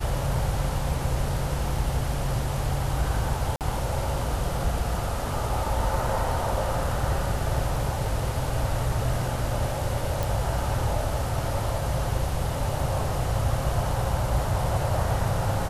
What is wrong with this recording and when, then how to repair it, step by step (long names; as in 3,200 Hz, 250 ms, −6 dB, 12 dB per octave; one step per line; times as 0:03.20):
0:03.56–0:03.61: drop-out 48 ms
0:10.23: click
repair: click removal
repair the gap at 0:03.56, 48 ms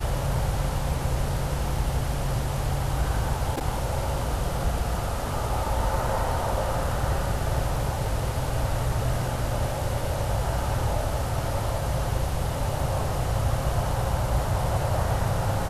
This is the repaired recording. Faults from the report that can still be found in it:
0:10.23: click